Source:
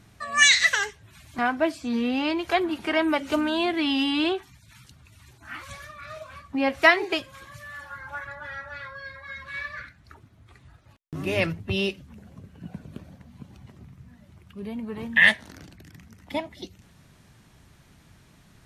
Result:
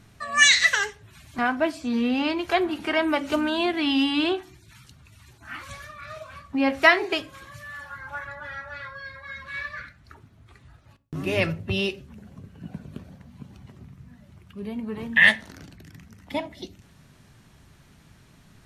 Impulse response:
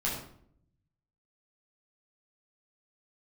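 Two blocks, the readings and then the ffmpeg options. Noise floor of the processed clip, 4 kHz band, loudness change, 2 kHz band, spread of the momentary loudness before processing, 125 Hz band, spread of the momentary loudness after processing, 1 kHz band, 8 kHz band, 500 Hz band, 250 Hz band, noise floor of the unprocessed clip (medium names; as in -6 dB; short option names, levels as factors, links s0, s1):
-55 dBFS, +0.5 dB, +1.0 dB, +1.0 dB, 23 LU, +1.5 dB, 22 LU, +0.5 dB, 0.0 dB, +0.5 dB, +1.0 dB, -56 dBFS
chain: -filter_complex "[0:a]asplit=2[s0][s1];[1:a]atrim=start_sample=2205,asetrate=88200,aresample=44100,lowpass=8400[s2];[s1][s2]afir=irnorm=-1:irlink=0,volume=0.188[s3];[s0][s3]amix=inputs=2:normalize=0"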